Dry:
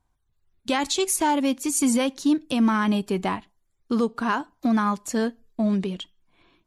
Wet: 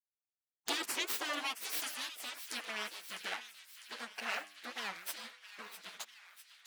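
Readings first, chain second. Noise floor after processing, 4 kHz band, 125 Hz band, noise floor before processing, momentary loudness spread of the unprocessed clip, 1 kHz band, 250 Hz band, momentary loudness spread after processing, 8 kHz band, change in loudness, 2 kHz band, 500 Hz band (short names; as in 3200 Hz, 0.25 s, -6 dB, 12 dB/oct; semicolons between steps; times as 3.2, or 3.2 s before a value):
under -85 dBFS, -6.5 dB, under -35 dB, -72 dBFS, 8 LU, -17.5 dB, -31.0 dB, 14 LU, -14.0 dB, -15.5 dB, -7.5 dB, -21.5 dB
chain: minimum comb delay 9.2 ms; backlash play -42 dBFS; compressor 4:1, threshold -40 dBFS, peak gain reduction 18.5 dB; high-pass sweep 390 Hz -> 990 Hz, 0.4–2.02; de-hum 100.3 Hz, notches 28; spectral gate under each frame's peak -15 dB weak; on a send: thin delay 0.652 s, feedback 61%, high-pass 1700 Hz, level -11.5 dB; on the sum: record warp 45 rpm, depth 250 cents; gain +10.5 dB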